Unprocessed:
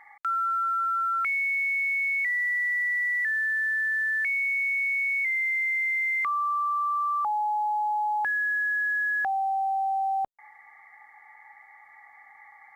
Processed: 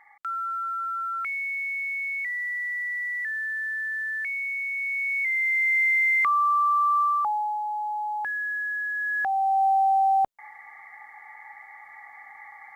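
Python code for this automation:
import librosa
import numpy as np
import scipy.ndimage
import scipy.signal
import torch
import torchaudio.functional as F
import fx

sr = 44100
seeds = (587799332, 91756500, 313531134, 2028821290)

y = fx.gain(x, sr, db=fx.line((4.71, -3.5), (5.8, 5.0), (7.0, 5.0), (7.62, -3.0), (8.93, -3.0), (9.65, 6.0)))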